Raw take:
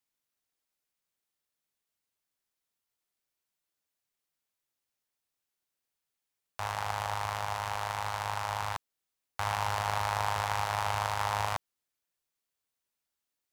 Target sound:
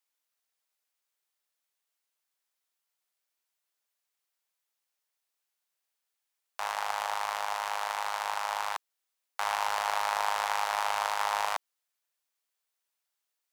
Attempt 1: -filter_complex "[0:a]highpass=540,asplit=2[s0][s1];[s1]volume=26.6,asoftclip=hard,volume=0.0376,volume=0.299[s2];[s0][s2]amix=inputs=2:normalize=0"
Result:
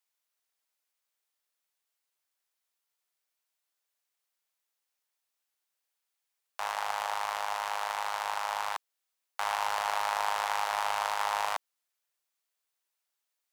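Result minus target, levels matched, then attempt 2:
overload inside the chain: distortion +26 dB
-filter_complex "[0:a]highpass=540,asplit=2[s0][s1];[s1]volume=7.08,asoftclip=hard,volume=0.141,volume=0.299[s2];[s0][s2]amix=inputs=2:normalize=0"

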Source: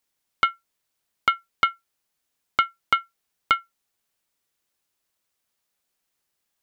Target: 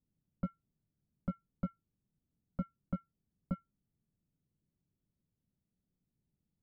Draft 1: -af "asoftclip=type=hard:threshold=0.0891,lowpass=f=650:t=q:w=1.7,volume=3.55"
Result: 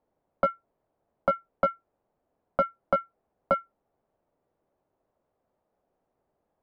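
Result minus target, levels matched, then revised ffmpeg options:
125 Hz band -17.0 dB
-af "asoftclip=type=hard:threshold=0.0891,lowpass=f=170:t=q:w=1.7,volume=3.55"

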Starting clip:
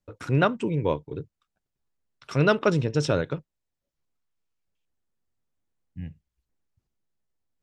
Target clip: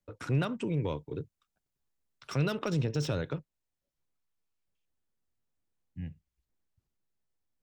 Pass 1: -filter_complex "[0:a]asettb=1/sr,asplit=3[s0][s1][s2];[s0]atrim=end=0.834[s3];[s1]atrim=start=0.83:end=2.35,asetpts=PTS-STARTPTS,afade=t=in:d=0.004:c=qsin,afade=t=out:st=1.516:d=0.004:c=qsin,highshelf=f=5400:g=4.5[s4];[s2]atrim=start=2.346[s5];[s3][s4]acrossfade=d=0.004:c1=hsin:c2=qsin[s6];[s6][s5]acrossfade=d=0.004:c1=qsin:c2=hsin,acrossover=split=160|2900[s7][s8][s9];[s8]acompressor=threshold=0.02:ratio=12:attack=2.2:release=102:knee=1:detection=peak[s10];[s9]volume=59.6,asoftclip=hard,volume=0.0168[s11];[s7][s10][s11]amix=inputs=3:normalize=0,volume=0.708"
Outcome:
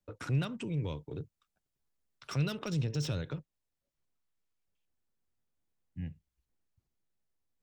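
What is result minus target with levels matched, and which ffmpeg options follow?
compression: peak gain reduction +8 dB
-filter_complex "[0:a]asettb=1/sr,asplit=3[s0][s1][s2];[s0]atrim=end=0.834[s3];[s1]atrim=start=0.83:end=2.35,asetpts=PTS-STARTPTS,afade=t=in:d=0.004:c=qsin,afade=t=out:st=1.516:d=0.004:c=qsin,highshelf=f=5400:g=4.5[s4];[s2]atrim=start=2.346[s5];[s3][s4]acrossfade=d=0.004:c1=hsin:c2=qsin[s6];[s6][s5]acrossfade=d=0.004:c1=qsin:c2=hsin,acrossover=split=160|2900[s7][s8][s9];[s8]acompressor=threshold=0.0531:ratio=12:attack=2.2:release=102:knee=1:detection=peak[s10];[s9]volume=59.6,asoftclip=hard,volume=0.0168[s11];[s7][s10][s11]amix=inputs=3:normalize=0,volume=0.708"

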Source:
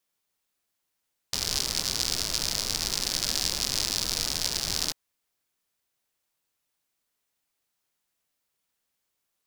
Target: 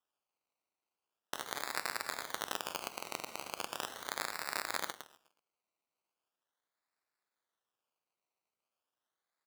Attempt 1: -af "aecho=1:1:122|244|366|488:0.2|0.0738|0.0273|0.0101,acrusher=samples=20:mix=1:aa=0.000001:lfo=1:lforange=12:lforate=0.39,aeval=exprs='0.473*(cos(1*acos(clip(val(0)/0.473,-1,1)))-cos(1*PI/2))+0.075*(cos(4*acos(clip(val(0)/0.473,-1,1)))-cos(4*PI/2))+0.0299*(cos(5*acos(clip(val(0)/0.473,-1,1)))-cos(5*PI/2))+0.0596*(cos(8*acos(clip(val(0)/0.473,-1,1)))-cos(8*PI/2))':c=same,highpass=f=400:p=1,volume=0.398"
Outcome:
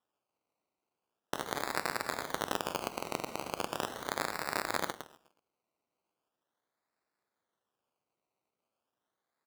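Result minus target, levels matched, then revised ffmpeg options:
500 Hz band +5.0 dB
-af "aecho=1:1:122|244|366|488:0.2|0.0738|0.0273|0.0101,acrusher=samples=20:mix=1:aa=0.000001:lfo=1:lforange=12:lforate=0.39,aeval=exprs='0.473*(cos(1*acos(clip(val(0)/0.473,-1,1)))-cos(1*PI/2))+0.075*(cos(4*acos(clip(val(0)/0.473,-1,1)))-cos(4*PI/2))+0.0299*(cos(5*acos(clip(val(0)/0.473,-1,1)))-cos(5*PI/2))+0.0596*(cos(8*acos(clip(val(0)/0.473,-1,1)))-cos(8*PI/2))':c=same,highpass=f=1600:p=1,volume=0.398"

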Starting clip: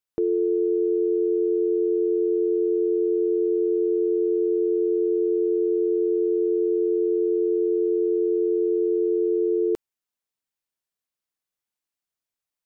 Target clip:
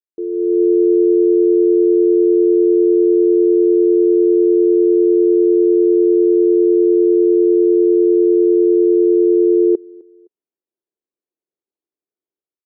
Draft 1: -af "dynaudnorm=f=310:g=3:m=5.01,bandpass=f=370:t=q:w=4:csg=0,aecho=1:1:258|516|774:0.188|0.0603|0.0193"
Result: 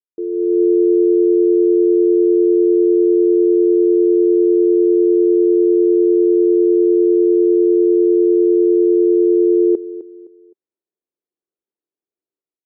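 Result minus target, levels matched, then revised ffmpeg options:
echo-to-direct +10 dB
-af "dynaudnorm=f=310:g=3:m=5.01,bandpass=f=370:t=q:w=4:csg=0,aecho=1:1:258|516:0.0596|0.0191"

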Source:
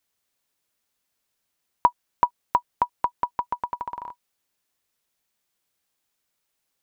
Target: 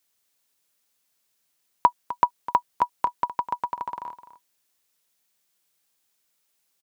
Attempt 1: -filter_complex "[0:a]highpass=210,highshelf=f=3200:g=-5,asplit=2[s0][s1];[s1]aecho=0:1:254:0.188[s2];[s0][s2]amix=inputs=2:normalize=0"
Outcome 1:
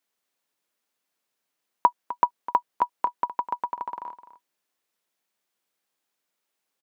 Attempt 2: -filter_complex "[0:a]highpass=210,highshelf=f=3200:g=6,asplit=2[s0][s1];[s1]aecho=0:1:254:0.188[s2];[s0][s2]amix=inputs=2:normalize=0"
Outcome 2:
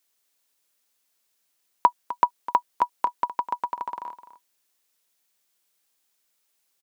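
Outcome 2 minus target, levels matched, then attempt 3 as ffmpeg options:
125 Hz band -7.0 dB
-filter_complex "[0:a]highpass=92,highshelf=f=3200:g=6,asplit=2[s0][s1];[s1]aecho=0:1:254:0.188[s2];[s0][s2]amix=inputs=2:normalize=0"

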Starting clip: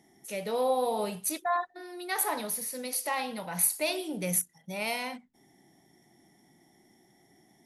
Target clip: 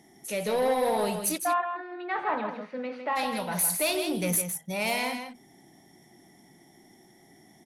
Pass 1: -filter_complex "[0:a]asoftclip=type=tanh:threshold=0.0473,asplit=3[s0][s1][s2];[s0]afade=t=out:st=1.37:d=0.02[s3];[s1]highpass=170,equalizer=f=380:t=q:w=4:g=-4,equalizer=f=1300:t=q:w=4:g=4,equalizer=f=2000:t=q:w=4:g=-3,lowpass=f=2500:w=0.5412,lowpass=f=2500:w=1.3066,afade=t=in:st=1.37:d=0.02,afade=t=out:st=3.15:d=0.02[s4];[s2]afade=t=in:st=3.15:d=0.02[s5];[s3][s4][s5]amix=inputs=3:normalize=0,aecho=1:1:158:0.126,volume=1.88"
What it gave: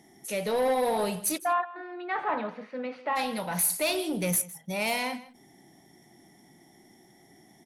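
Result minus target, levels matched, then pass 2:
echo-to-direct -10.5 dB
-filter_complex "[0:a]asoftclip=type=tanh:threshold=0.0473,asplit=3[s0][s1][s2];[s0]afade=t=out:st=1.37:d=0.02[s3];[s1]highpass=170,equalizer=f=380:t=q:w=4:g=-4,equalizer=f=1300:t=q:w=4:g=4,equalizer=f=2000:t=q:w=4:g=-3,lowpass=f=2500:w=0.5412,lowpass=f=2500:w=1.3066,afade=t=in:st=1.37:d=0.02,afade=t=out:st=3.15:d=0.02[s4];[s2]afade=t=in:st=3.15:d=0.02[s5];[s3][s4][s5]amix=inputs=3:normalize=0,aecho=1:1:158:0.422,volume=1.88"

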